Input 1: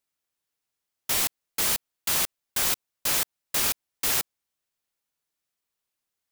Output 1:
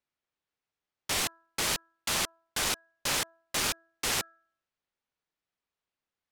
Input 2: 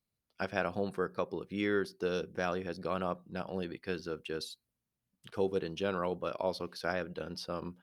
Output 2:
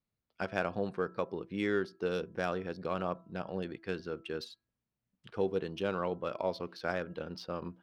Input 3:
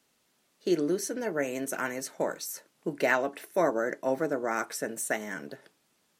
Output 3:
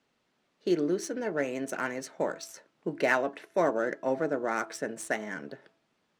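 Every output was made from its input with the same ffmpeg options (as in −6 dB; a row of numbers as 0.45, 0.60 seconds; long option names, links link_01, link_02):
-af "bandreject=frequency=330.9:width_type=h:width=4,bandreject=frequency=661.8:width_type=h:width=4,bandreject=frequency=992.7:width_type=h:width=4,bandreject=frequency=1323.6:width_type=h:width=4,bandreject=frequency=1654.5:width_type=h:width=4,adynamicsmooth=sensitivity=6.5:basefreq=4100"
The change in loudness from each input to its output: −5.5, 0.0, −0.5 LU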